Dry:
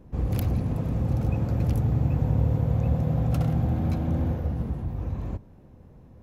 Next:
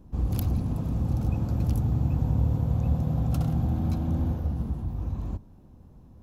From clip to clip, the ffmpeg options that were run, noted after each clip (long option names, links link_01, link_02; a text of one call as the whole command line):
ffmpeg -i in.wav -af "equalizer=frequency=125:width_type=o:width=1:gain=-4,equalizer=frequency=500:width_type=o:width=1:gain=-8,equalizer=frequency=2000:width_type=o:width=1:gain=-10,volume=1.5dB" out.wav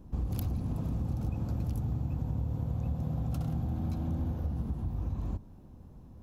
ffmpeg -i in.wav -af "acompressor=threshold=-29dB:ratio=6" out.wav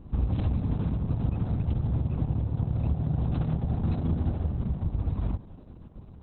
ffmpeg -i in.wav -af "volume=6.5dB" -ar 48000 -c:a libopus -b:a 6k out.opus